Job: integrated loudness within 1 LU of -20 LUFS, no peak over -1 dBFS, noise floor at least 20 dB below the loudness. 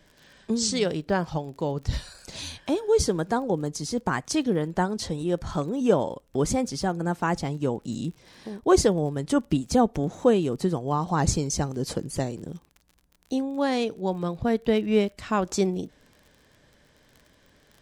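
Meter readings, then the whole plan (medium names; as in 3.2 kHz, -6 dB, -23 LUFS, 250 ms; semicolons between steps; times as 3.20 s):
tick rate 33 per s; loudness -26.0 LUFS; peak level -7.5 dBFS; loudness target -20.0 LUFS
-> de-click; trim +6 dB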